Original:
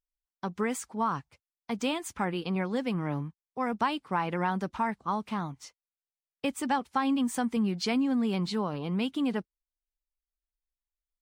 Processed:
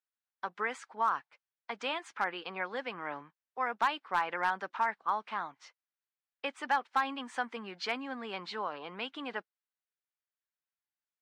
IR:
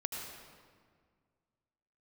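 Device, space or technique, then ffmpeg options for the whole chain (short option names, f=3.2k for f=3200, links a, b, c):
megaphone: -af "highpass=660,lowpass=3.4k,equalizer=f=1.6k:t=o:w=0.57:g=5,asoftclip=type=hard:threshold=-20dB"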